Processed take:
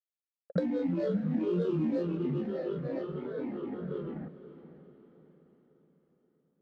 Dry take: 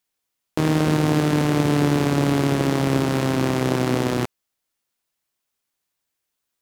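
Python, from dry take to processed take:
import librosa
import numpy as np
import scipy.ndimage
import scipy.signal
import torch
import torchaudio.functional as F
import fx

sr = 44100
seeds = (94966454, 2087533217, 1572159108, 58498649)

y = fx.delta_hold(x, sr, step_db=-21.0)
y = fx.recorder_agc(y, sr, target_db=-9.0, rise_db_per_s=25.0, max_gain_db=30)
y = fx.vowel_filter(y, sr, vowel='u')
y = fx.low_shelf(y, sr, hz=150.0, db=4.0)
y = y + 0.96 * np.pad(y, (int(3.0 * sr / 1000.0), 0))[:len(y)]
y = fx.granulator(y, sr, seeds[0], grain_ms=174.0, per_s=20.0, spray_ms=32.0, spread_st=12)
y = fx.env_lowpass(y, sr, base_hz=760.0, full_db=-15.5)
y = fx.echo_diffused(y, sr, ms=518, feedback_pct=46, wet_db=-14.0)
y = y * librosa.db_to_amplitude(-8.5)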